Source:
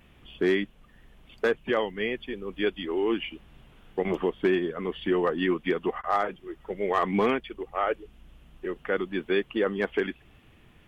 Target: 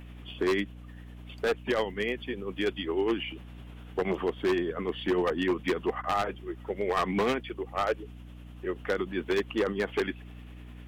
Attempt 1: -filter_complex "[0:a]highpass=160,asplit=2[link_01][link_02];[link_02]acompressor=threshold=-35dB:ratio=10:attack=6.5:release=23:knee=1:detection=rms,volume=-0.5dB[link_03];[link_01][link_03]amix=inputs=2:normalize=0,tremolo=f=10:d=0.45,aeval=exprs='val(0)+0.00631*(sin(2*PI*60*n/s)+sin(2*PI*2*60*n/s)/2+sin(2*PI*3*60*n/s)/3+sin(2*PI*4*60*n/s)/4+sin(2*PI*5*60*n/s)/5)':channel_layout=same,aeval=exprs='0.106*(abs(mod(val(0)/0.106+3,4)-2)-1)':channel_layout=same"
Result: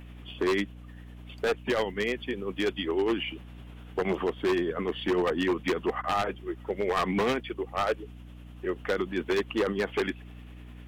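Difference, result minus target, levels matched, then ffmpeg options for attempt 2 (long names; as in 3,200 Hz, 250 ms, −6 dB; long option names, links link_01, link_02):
downward compressor: peak gain reduction −8.5 dB
-filter_complex "[0:a]highpass=160,asplit=2[link_01][link_02];[link_02]acompressor=threshold=-44.5dB:ratio=10:attack=6.5:release=23:knee=1:detection=rms,volume=-0.5dB[link_03];[link_01][link_03]amix=inputs=2:normalize=0,tremolo=f=10:d=0.45,aeval=exprs='val(0)+0.00631*(sin(2*PI*60*n/s)+sin(2*PI*2*60*n/s)/2+sin(2*PI*3*60*n/s)/3+sin(2*PI*4*60*n/s)/4+sin(2*PI*5*60*n/s)/5)':channel_layout=same,aeval=exprs='0.106*(abs(mod(val(0)/0.106+3,4)-2)-1)':channel_layout=same"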